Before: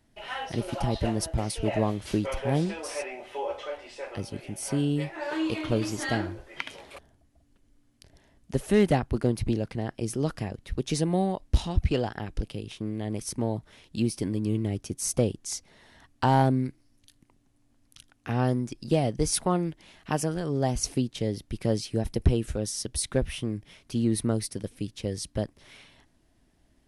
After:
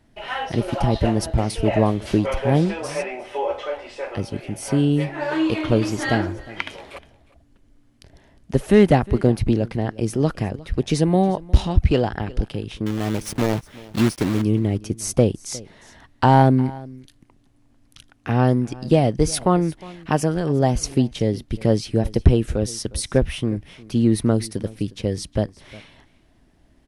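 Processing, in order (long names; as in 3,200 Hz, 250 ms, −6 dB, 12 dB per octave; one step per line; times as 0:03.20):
0:12.86–0:14.43: one scale factor per block 3 bits
high-shelf EQ 4,500 Hz −8 dB
single-tap delay 358 ms −21 dB
level +8 dB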